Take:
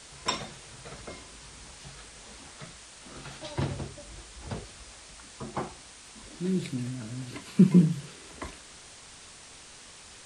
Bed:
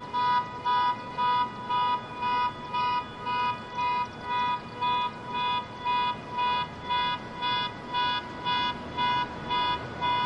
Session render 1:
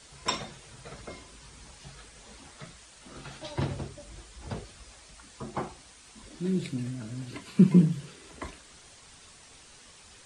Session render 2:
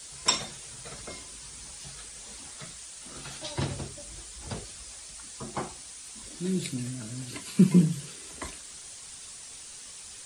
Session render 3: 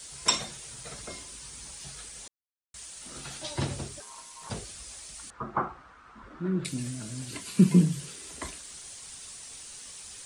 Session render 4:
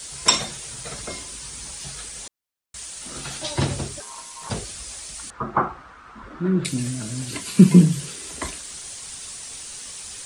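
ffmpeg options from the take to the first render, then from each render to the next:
-af "afftdn=nr=6:nf=-50"
-af "aemphasis=mode=production:type=75fm"
-filter_complex "[0:a]asettb=1/sr,asplit=3[a][b][c];[a]atrim=end=4.004[d];[b]atrim=start=4:end=4.5,asetpts=PTS-STARTPTS,afade=t=in:d=0.004:c=qsin,afade=t=out:st=0.496:d=0.004:c=qsin,aeval=exprs='val(0)*sin(2*PI*1000*n/s)':c=same[e];[c]atrim=start=4.496[f];[d][e]acrossfade=d=0.004:c1=hsin:c2=qsin[g];[g][f]acrossfade=d=0.004:c1=qsin:c2=hsin,asettb=1/sr,asplit=3[h][i][j];[h]atrim=end=5.304[k];[i]atrim=start=5.3:end=6.65,asetpts=PTS-STARTPTS,afade=t=in:d=0.004:c=qsin,afade=t=out:st=1.346:d=0.004:c=qsin,lowpass=f=1.3k:t=q:w=4.4[l];[j]atrim=start=6.646[m];[k][l]acrossfade=d=0.004:c1=hsin:c2=qsin[n];[n][m]acrossfade=d=0.004:c1=qsin:c2=hsin,asplit=3[o][p][q];[o]atrim=end=2.28,asetpts=PTS-STARTPTS,afade=t=out:st=2.276:d=0.004:c=hsin[r];[p]atrim=start=2.28:end=2.74,asetpts=PTS-STARTPTS,volume=0[s];[q]atrim=start=2.74,asetpts=PTS-STARTPTS,afade=t=in:d=0.004:c=hsin[t];[r][s][t]concat=n=3:v=0:a=1"
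-af "volume=8dB,alimiter=limit=-1dB:level=0:latency=1"

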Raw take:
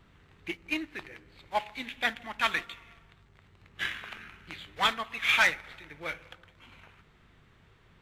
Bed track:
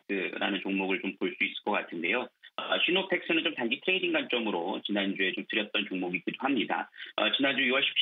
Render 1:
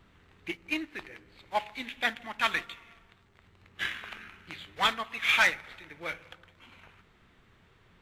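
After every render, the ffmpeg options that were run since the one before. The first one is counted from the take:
-af "bandreject=f=50:t=h:w=4,bandreject=f=100:t=h:w=4,bandreject=f=150:t=h:w=4"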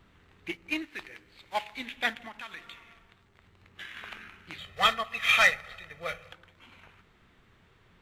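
-filter_complex "[0:a]asettb=1/sr,asplit=3[a][b][c];[a]atrim=end=0.824[d];[b]atrim=start=0.82:end=1.73,asetpts=PTS-STARTPTS,afade=t=in:d=0.004:c=qsin,afade=t=out:st=0.906:d=0.004:c=qsin,tiltshelf=f=1.5k:g=-3.5[e];[c]atrim=start=1.726[f];[d][e]acrossfade=d=0.004:c1=hsin:c2=qsin[g];[g][f]acrossfade=d=0.004:c1=qsin:c2=hsin,asettb=1/sr,asplit=3[h][i][j];[h]atrim=end=2.284[k];[i]atrim=start=2.28:end=3.97,asetpts=PTS-STARTPTS,afade=t=in:d=0.004:c=qsin,afade=t=out:st=1.686:d=0.004:c=qsin,acompressor=threshold=-40dB:ratio=5:attack=3.2:release=140:knee=1:detection=peak[l];[j]atrim=start=3.966[m];[k][l]acrossfade=d=0.004:c1=hsin:c2=qsin[n];[n][m]acrossfade=d=0.004:c1=qsin:c2=hsin,asettb=1/sr,asplit=3[o][p][q];[o]atrim=end=4.584[r];[p]atrim=start=4.58:end=6.32,asetpts=PTS-STARTPTS,afade=t=in:d=0.004:c=qsin,afade=t=out:st=1.736:d=0.004:c=qsin,aecho=1:1:1.6:0.81,atrim=end_sample=76734[s];[q]atrim=start=6.316[t];[r][s]acrossfade=d=0.004:c1=hsin:c2=qsin[u];[u][t]acrossfade=d=0.004:c1=qsin:c2=hsin"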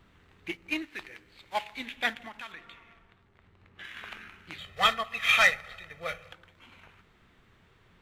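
-filter_complex "[0:a]asettb=1/sr,asplit=3[a][b][c];[a]atrim=end=2.524[d];[b]atrim=start=2.52:end=3.84,asetpts=PTS-STARTPTS,afade=t=in:d=0.004:c=qsin,afade=t=out:st=1.316:d=0.004:c=qsin,highshelf=f=4k:g=-11.5[e];[c]atrim=start=3.836[f];[d][e]acrossfade=d=0.004:c1=hsin:c2=qsin[g];[g][f]acrossfade=d=0.004:c1=qsin:c2=hsin"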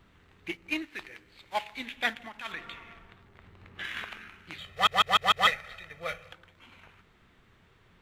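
-filter_complex "[0:a]asplit=3[a][b][c];[a]afade=t=out:st=2.44:d=0.02[d];[b]acontrast=78,afade=t=in:st=2.44:d=0.02,afade=t=out:st=4.03:d=0.02[e];[c]afade=t=in:st=4.03:d=0.02[f];[d][e][f]amix=inputs=3:normalize=0,asplit=6[g][h][i][j][k][l];[g]atrim=end=4.872[m];[h]atrim=start=4.718:end=4.872[n];[i]atrim=start=4.718:end=4.872[o];[j]atrim=start=4.718:end=4.872[p];[k]atrim=start=4.718:end=4.872[q];[l]atrim=start=5.468[r];[m][n]acrossfade=d=0.004:c1=hsin:c2=hsin[s];[s][o]acrossfade=d=0.004:c1=hsin:c2=hsin[t];[t][p]acrossfade=d=0.004:c1=hsin:c2=hsin[u];[u][q]acrossfade=d=0.004:c1=hsin:c2=hsin[v];[v][r]acrossfade=d=0.004:c1=hsin:c2=hsin"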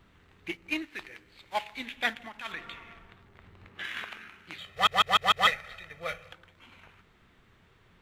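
-filter_complex "[0:a]asettb=1/sr,asplit=3[a][b][c];[a]atrim=end=3.684[d];[b]atrim=start=3.68:end=4.76,asetpts=PTS-STARTPTS,afade=t=in:d=0.004:c=qsin,afade=t=out:st=1.076:d=0.004:c=qsin,lowshelf=f=100:g=-10.5[e];[c]atrim=start=4.756[f];[d][e]acrossfade=d=0.004:c1=hsin:c2=qsin[g];[g][f]acrossfade=d=0.004:c1=qsin:c2=hsin"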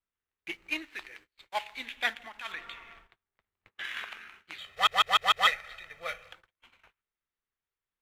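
-af "equalizer=f=140:t=o:w=2.8:g=-12,agate=range=-31dB:threshold=-54dB:ratio=16:detection=peak"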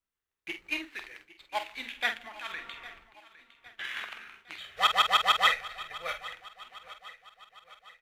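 -filter_complex "[0:a]asplit=2[a][b];[b]adelay=47,volume=-8.5dB[c];[a][c]amix=inputs=2:normalize=0,aecho=1:1:808|1616|2424|3232:0.126|0.0629|0.0315|0.0157"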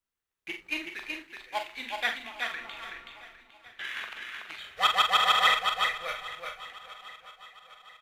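-filter_complex "[0:a]asplit=2[a][b];[b]adelay=39,volume=-9dB[c];[a][c]amix=inputs=2:normalize=0,asplit=2[d][e];[e]aecho=0:1:375:0.596[f];[d][f]amix=inputs=2:normalize=0"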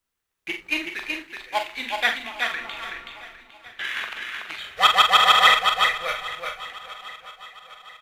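-af "volume=7.5dB"

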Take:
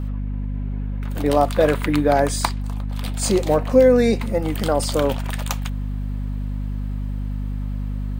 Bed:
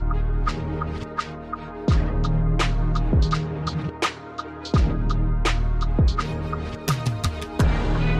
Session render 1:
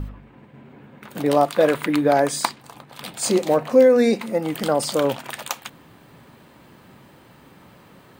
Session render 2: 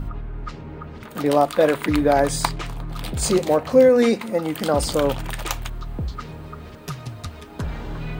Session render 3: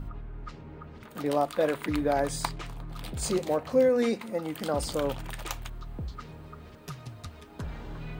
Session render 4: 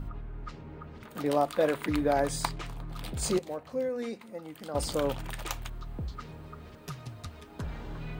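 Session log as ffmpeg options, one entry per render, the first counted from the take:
-af "bandreject=f=50:t=h:w=4,bandreject=f=100:t=h:w=4,bandreject=f=150:t=h:w=4,bandreject=f=200:t=h:w=4,bandreject=f=250:t=h:w=4"
-filter_complex "[1:a]volume=-9dB[a];[0:a][a]amix=inputs=2:normalize=0"
-af "volume=-9dB"
-filter_complex "[0:a]asplit=3[a][b][c];[a]atrim=end=3.392[d];[b]atrim=start=3.388:end=4.752,asetpts=PTS-STARTPTS,volume=-9.5dB[e];[c]atrim=start=4.748[f];[d][e]acrossfade=d=0.004:c1=hsin:c2=hsin[g];[g][f]acrossfade=d=0.004:c1=hsin:c2=hsin"

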